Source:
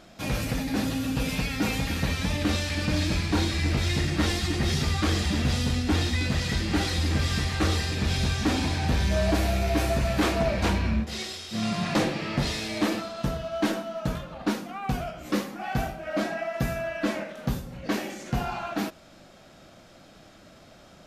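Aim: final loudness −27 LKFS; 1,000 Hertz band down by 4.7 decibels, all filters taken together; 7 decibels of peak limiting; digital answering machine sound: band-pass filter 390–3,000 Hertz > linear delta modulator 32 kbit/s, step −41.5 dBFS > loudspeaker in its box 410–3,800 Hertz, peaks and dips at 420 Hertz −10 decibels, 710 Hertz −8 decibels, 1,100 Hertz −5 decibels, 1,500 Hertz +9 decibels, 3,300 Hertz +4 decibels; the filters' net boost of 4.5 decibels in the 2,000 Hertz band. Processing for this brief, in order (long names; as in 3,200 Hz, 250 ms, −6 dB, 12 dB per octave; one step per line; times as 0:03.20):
parametric band 1,000 Hz −5.5 dB
parametric band 2,000 Hz +4 dB
brickwall limiter −21.5 dBFS
band-pass filter 390–3,000 Hz
linear delta modulator 32 kbit/s, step −41.5 dBFS
loudspeaker in its box 410–3,800 Hz, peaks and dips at 420 Hz −10 dB, 710 Hz −8 dB, 1,100 Hz −5 dB, 1,500 Hz +9 dB, 3,300 Hz +4 dB
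level +8 dB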